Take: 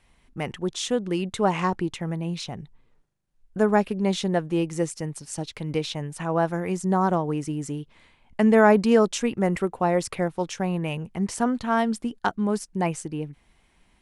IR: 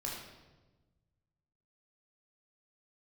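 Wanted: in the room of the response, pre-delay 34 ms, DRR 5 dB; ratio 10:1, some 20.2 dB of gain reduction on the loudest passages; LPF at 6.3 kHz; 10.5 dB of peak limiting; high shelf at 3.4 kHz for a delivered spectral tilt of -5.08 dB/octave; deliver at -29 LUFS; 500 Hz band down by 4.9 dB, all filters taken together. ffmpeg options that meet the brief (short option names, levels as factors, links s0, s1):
-filter_complex "[0:a]lowpass=6300,equalizer=f=500:t=o:g=-6.5,highshelf=f=3400:g=3.5,acompressor=threshold=0.0158:ratio=10,alimiter=level_in=2.24:limit=0.0631:level=0:latency=1,volume=0.447,asplit=2[s0][s1];[1:a]atrim=start_sample=2205,adelay=34[s2];[s1][s2]afir=irnorm=-1:irlink=0,volume=0.473[s3];[s0][s3]amix=inputs=2:normalize=0,volume=3.76"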